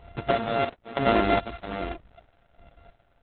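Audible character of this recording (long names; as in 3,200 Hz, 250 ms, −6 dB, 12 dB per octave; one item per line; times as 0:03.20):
a buzz of ramps at a fixed pitch in blocks of 64 samples
sample-and-hold tremolo 3.1 Hz, depth 85%
Opus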